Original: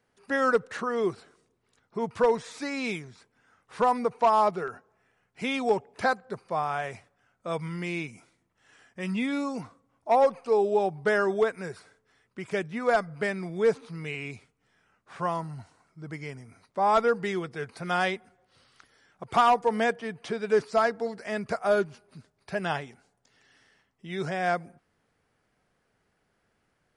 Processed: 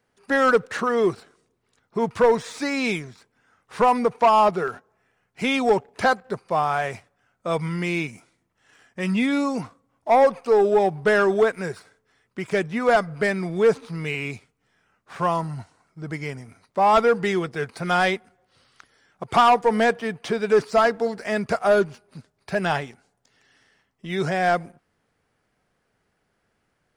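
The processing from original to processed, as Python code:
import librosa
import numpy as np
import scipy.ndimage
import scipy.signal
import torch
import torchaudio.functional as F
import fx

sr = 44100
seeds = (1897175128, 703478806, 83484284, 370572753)

y = fx.leveller(x, sr, passes=1)
y = y * 10.0 ** (3.5 / 20.0)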